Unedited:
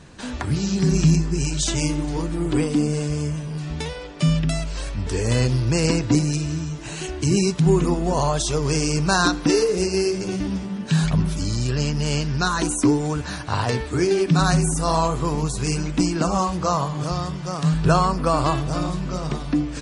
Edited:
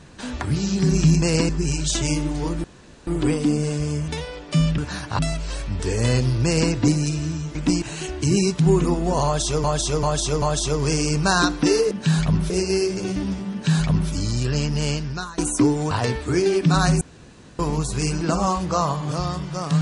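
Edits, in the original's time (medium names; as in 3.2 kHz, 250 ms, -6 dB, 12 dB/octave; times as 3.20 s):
2.37 s: insert room tone 0.43 s
3.38–3.76 s: delete
5.72–5.99 s: copy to 1.22 s
8.25–8.64 s: loop, 4 plays
10.76–11.35 s: copy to 9.74 s
12.08–12.62 s: fade out, to -20.5 dB
13.15–13.56 s: move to 4.46 s
14.66–15.24 s: room tone
15.86–16.13 s: move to 6.82 s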